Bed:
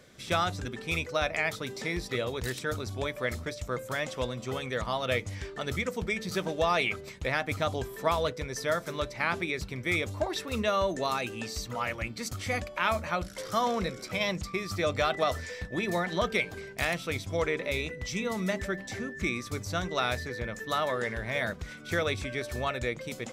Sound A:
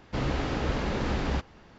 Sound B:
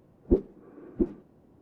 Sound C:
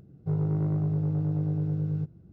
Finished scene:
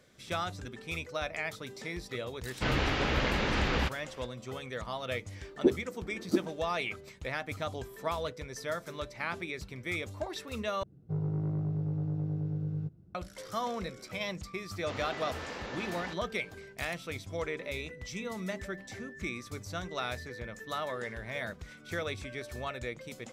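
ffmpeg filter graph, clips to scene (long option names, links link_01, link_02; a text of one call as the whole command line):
ffmpeg -i bed.wav -i cue0.wav -i cue1.wav -i cue2.wav -filter_complex "[1:a]asplit=2[link_01][link_02];[0:a]volume=-6.5dB[link_03];[link_01]equalizer=frequency=2600:width=0.6:gain=9[link_04];[2:a]highpass=250[link_05];[link_02]highpass=frequency=620:poles=1[link_06];[link_03]asplit=2[link_07][link_08];[link_07]atrim=end=10.834[link_09];[3:a]atrim=end=2.32,asetpts=PTS-STARTPTS,volume=-5.5dB[link_10];[link_08]atrim=start=13.146[link_11];[link_04]atrim=end=1.78,asetpts=PTS-STARTPTS,volume=-2.5dB,afade=type=in:duration=0.004:curve=hsin,afade=type=out:start_time=1.776:duration=0.004:curve=hsin,adelay=2480[link_12];[link_05]atrim=end=1.61,asetpts=PTS-STARTPTS,afade=type=in:duration=0.004:curve=hsin,afade=type=out:start_time=1.606:duration=0.004:curve=hsin,adelay=235053S[link_13];[link_06]atrim=end=1.78,asetpts=PTS-STARTPTS,volume=-6.5dB,afade=type=in:duration=0.004:curve=hsin,afade=type=out:start_time=1.776:duration=0.004:curve=hsin,adelay=14730[link_14];[link_09][link_10]acrossfade=duration=0.004:curve1=hsin:curve2=hsin[link_15];[link_15][link_11]acrossfade=duration=0.004:curve1=hsin:curve2=hsin[link_16];[link_16][link_12][link_13][link_14]amix=inputs=4:normalize=0" out.wav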